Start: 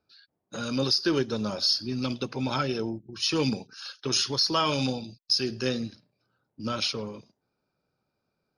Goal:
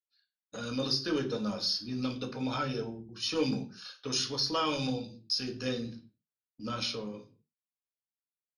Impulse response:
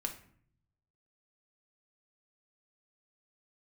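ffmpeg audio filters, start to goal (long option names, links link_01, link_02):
-filter_complex "[0:a]agate=range=-33dB:threshold=-46dB:ratio=3:detection=peak[link_01];[1:a]atrim=start_sample=2205,afade=type=out:start_time=0.39:duration=0.01,atrim=end_sample=17640,asetrate=66150,aresample=44100[link_02];[link_01][link_02]afir=irnorm=-1:irlink=0,volume=-2.5dB"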